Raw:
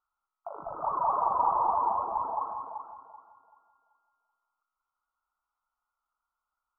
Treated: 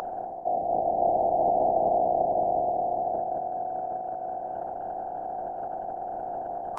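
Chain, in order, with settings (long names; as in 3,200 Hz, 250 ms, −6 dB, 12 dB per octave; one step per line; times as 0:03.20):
compressor on every frequency bin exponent 0.2
reversed playback
upward compression, threshold −25 dBFS
reversed playback
phase-vocoder pitch shift with formants kept −11 semitones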